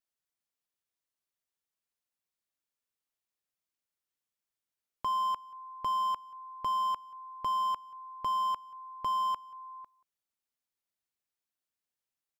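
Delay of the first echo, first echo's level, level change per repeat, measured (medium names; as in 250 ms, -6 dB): 182 ms, -24.0 dB, no regular repeats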